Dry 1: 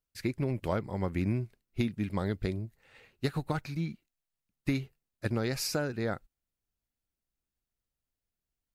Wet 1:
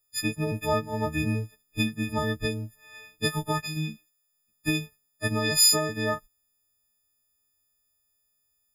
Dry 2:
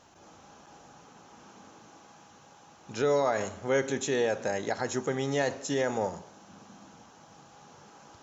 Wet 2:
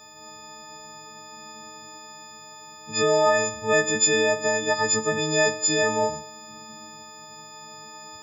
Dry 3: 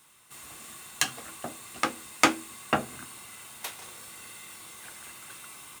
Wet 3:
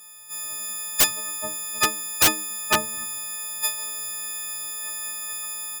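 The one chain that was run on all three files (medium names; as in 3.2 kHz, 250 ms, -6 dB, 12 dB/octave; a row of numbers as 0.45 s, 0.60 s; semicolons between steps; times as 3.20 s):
partials quantised in pitch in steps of 6 st; integer overflow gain 9 dB; peak normalisation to -9 dBFS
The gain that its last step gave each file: +2.5 dB, +3.5 dB, 0.0 dB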